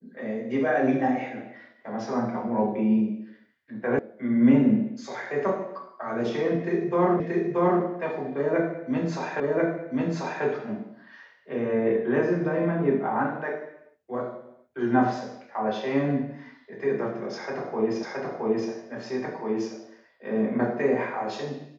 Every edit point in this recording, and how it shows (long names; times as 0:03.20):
0:03.99: cut off before it has died away
0:07.20: the same again, the last 0.63 s
0:09.40: the same again, the last 1.04 s
0:18.03: the same again, the last 0.67 s